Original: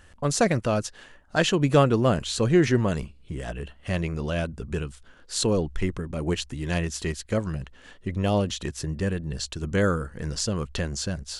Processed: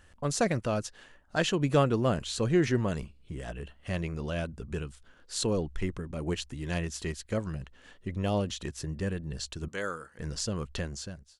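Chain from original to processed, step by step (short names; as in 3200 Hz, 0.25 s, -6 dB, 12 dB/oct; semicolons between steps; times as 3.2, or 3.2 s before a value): ending faded out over 0.60 s; 9.68–10.19 HPF 880 Hz 6 dB/oct; gain -5.5 dB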